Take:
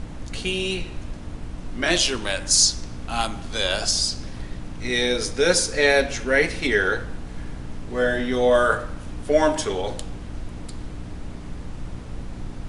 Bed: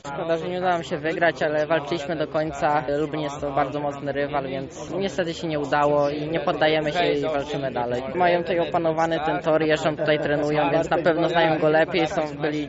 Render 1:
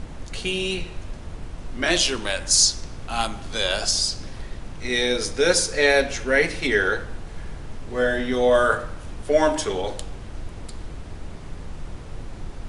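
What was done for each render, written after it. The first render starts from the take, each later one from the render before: de-hum 60 Hz, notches 5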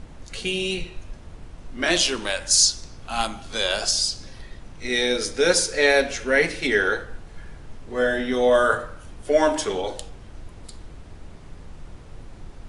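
noise print and reduce 6 dB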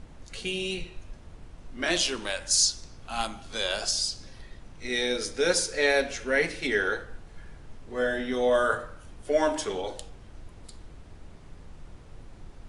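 gain -5.5 dB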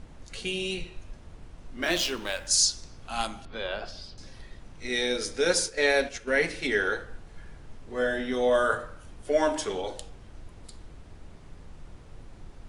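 1.82–2.47 median filter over 5 samples; 3.45–4.18 air absorption 380 m; 5.45–6.37 gate -36 dBFS, range -8 dB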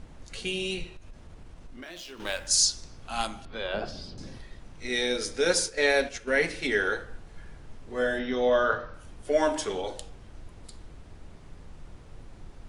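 0.96–2.2 compressor, threshold -40 dBFS; 3.74–4.38 bell 230 Hz +10 dB 2.7 oct; 8.19–8.94 steep low-pass 6000 Hz 72 dB/oct

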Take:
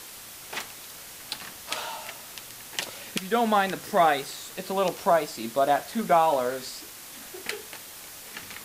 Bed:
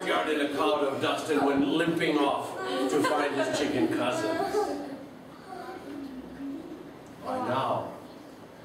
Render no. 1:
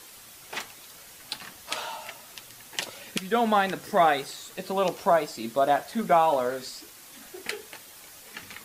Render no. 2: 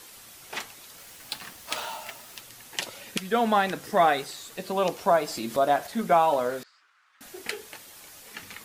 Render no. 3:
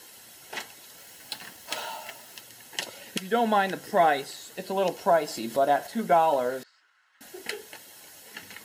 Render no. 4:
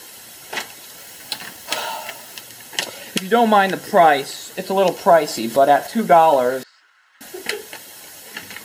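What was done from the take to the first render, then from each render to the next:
denoiser 6 dB, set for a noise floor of -44 dBFS
0.98–2.41 companded quantiser 4-bit; 5.11–5.87 upward compressor, threshold -26 dBFS; 6.63–7.21 ladder band-pass 1500 Hz, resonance 60%
notch comb 1200 Hz
gain +9.5 dB; limiter -2 dBFS, peak gain reduction 1.5 dB

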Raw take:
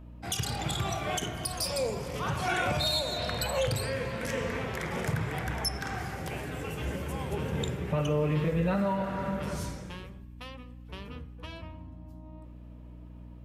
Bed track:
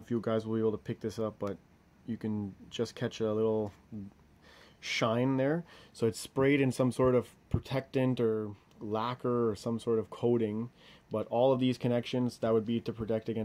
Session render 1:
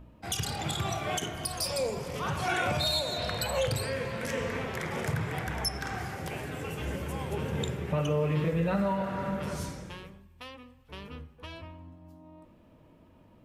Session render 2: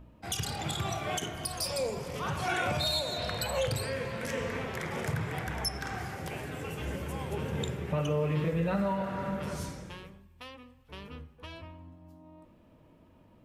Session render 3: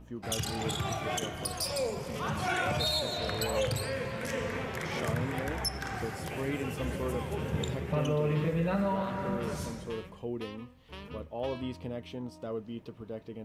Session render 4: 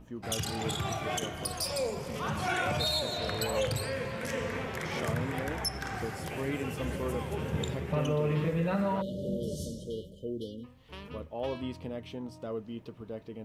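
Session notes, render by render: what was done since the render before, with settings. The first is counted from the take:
de-hum 60 Hz, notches 5
gain -1.5 dB
add bed track -8.5 dB
de-hum 61.4 Hz, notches 2; 9.02–10.64 spectral delete 640–2900 Hz

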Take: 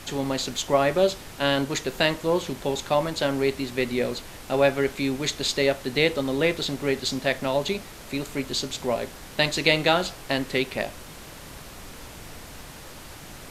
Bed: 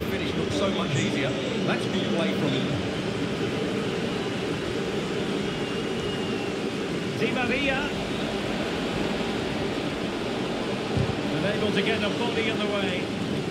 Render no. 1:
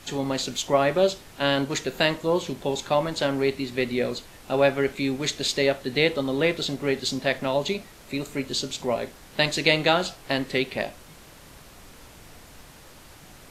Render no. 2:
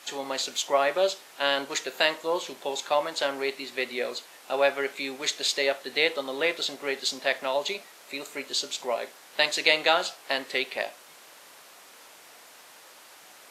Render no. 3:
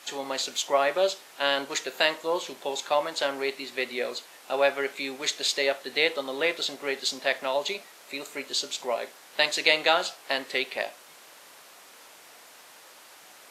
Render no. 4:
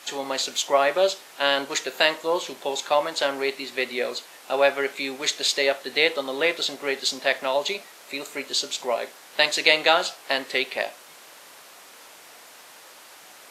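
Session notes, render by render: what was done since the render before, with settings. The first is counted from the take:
noise print and reduce 6 dB
HPF 560 Hz 12 dB/oct
nothing audible
gain +3.5 dB

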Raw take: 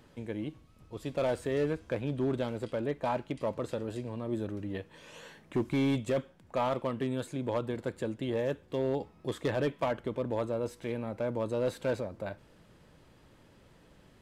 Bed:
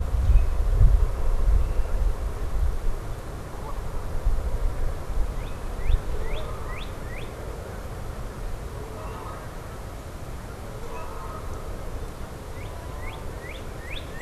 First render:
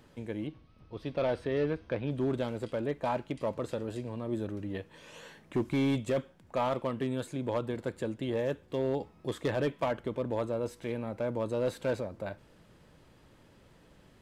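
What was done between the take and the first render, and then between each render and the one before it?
0.47–2.11 polynomial smoothing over 15 samples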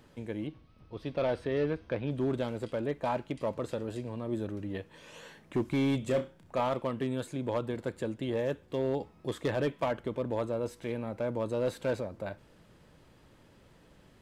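5.98–6.6 flutter echo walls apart 5.4 m, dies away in 0.23 s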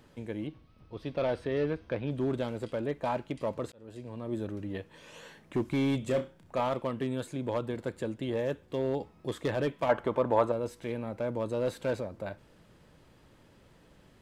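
3.72–4.54 fade in equal-power; 9.89–10.52 bell 970 Hz +12.5 dB 1.9 oct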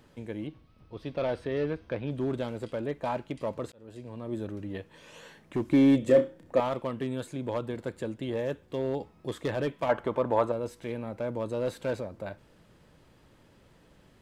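5.69–6.6 small resonant body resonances 310/500/1800 Hz, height 12 dB, ringing for 35 ms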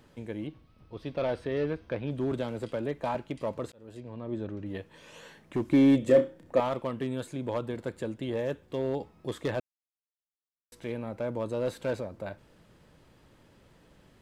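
2.31–3.15 three-band squash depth 40%; 4–4.66 air absorption 110 m; 9.6–10.72 mute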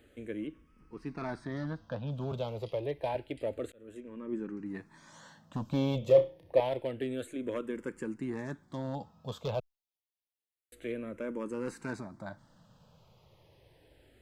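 endless phaser -0.28 Hz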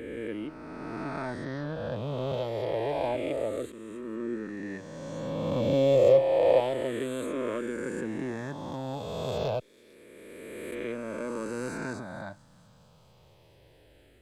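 spectral swells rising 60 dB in 2.60 s; thin delay 0.451 s, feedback 59%, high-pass 3500 Hz, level -19.5 dB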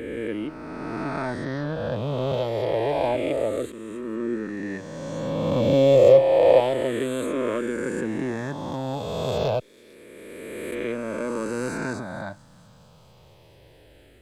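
gain +6 dB

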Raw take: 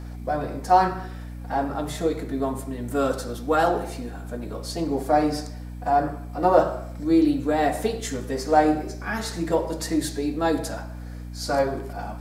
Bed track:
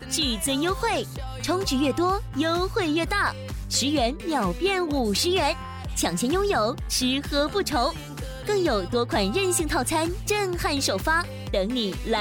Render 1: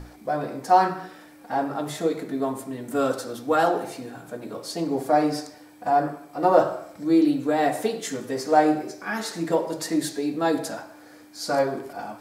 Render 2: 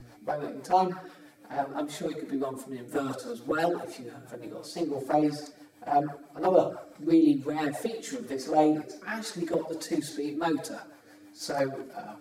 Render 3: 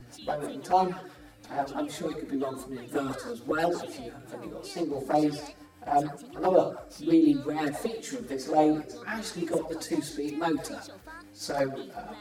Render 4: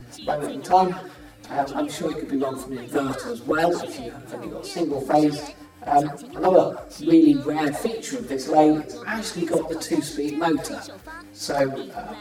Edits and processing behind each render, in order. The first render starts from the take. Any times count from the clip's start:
notches 60/120/180/240 Hz
envelope flanger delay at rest 10.8 ms, full sweep at -15 dBFS; rotary speaker horn 6 Hz
add bed track -23.5 dB
gain +6.5 dB; limiter -3 dBFS, peak gain reduction 1 dB

